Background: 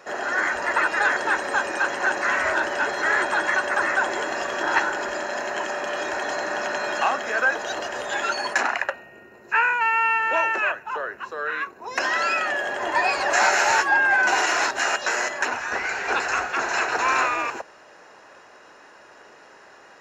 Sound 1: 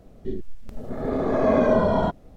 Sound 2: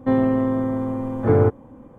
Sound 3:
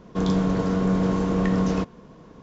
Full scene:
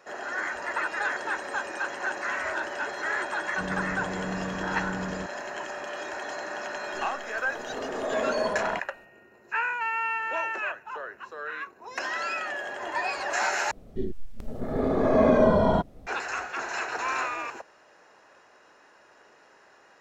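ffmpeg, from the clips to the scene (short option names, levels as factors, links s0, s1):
-filter_complex "[1:a]asplit=2[s0][s1];[0:a]volume=0.398[s2];[s0]bass=f=250:g=-15,treble=f=4000:g=5[s3];[s2]asplit=2[s4][s5];[s4]atrim=end=13.714[s6];[s1]atrim=end=2.36,asetpts=PTS-STARTPTS,volume=0.944[s7];[s5]atrim=start=16.066[s8];[3:a]atrim=end=2.42,asetpts=PTS-STARTPTS,volume=0.237,afade=t=in:d=0.004:c=hsin,afade=t=out:st=2.416:d=0.004:c=hsin,adelay=3420[s9];[s3]atrim=end=2.36,asetpts=PTS-STARTPTS,volume=0.447,afade=t=in:d=0.004:c=hsin,afade=t=out:st=2.356:d=0.004:c=hsin,adelay=6690[s10];[s6][s7]acrossfade=d=0.004:c1=hsin:c2=hsin[s11];[s11][s8]acrossfade=d=0.004:c1=hsin:c2=hsin[s12];[s12][s9][s10]amix=inputs=3:normalize=0"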